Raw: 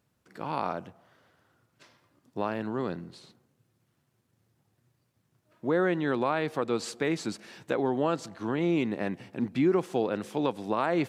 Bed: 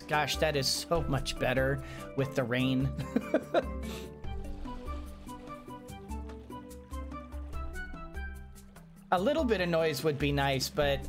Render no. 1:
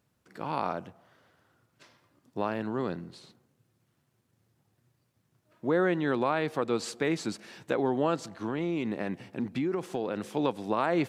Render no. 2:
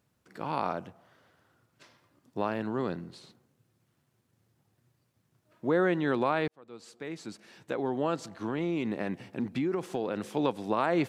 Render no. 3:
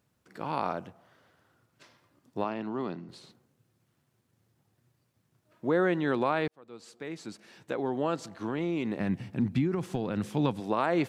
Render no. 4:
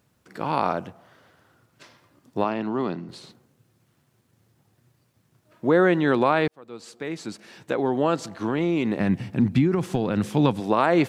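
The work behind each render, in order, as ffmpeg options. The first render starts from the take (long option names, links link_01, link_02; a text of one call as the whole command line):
ffmpeg -i in.wav -filter_complex "[0:a]asettb=1/sr,asplit=3[link_01][link_02][link_03];[link_01]atrim=end=8.334[link_04];[link_02]atrim=start=8.33:end=10.23,asetpts=PTS-STARTPTS,afade=type=in:duration=0.004:curve=qsin,afade=type=out:start_time=1.896:duration=0.004:curve=qsin,acompressor=threshold=-26dB:ratio=6:attack=3.2:release=140:knee=1:detection=peak[link_05];[link_03]atrim=start=10.226[link_06];[link_04][link_05]acrossfade=duration=0.004:curve1=hsin:curve2=qsin[link_07];[link_07][link_06]acrossfade=duration=0.004:curve1=qsin:curve2=hsin" out.wav
ffmpeg -i in.wav -filter_complex "[0:a]asplit=2[link_01][link_02];[link_01]atrim=end=6.48,asetpts=PTS-STARTPTS,afade=type=out:start_time=6.476:duration=0.004:curve=hsin[link_03];[link_02]atrim=start=6.48,asetpts=PTS-STARTPTS,afade=type=in:duration=2.09[link_04];[link_03][link_04]concat=n=2:v=0:a=1" out.wav
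ffmpeg -i in.wav -filter_complex "[0:a]asettb=1/sr,asplit=3[link_01][link_02][link_03];[link_01]atrim=end=2.444[link_04];[link_02]atrim=start=2.44:end=3.09,asetpts=PTS-STARTPTS,afade=type=in:duration=0.004:curve=qsin,afade=type=out:start_time=0.646:duration=0.004:curve=qsin,highpass=170,equalizer=frequency=500:width_type=q:width=4:gain=-8,equalizer=frequency=1600:width_type=q:width=4:gain=-8,equalizer=frequency=3900:width_type=q:width=4:gain=-5,lowpass=frequency=5800:width=0.5412,lowpass=frequency=5800:width=1.3066[link_05];[link_03]atrim=start=3.086[link_06];[link_04][link_05]acrossfade=duration=0.004:curve1=hsin:curve2=qsin[link_07];[link_07][link_06]acrossfade=duration=0.004:curve1=qsin:curve2=hsin,asplit=3[link_08][link_09][link_10];[link_08]afade=type=out:start_time=8.98:duration=0.02[link_11];[link_09]asubboost=boost=4.5:cutoff=190,afade=type=in:start_time=8.98:duration=0.02,afade=type=out:start_time=10.59:duration=0.02[link_12];[link_10]afade=type=in:start_time=10.59:duration=0.02[link_13];[link_11][link_12][link_13]amix=inputs=3:normalize=0" out.wav
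ffmpeg -i in.wav -af "volume=7.5dB" out.wav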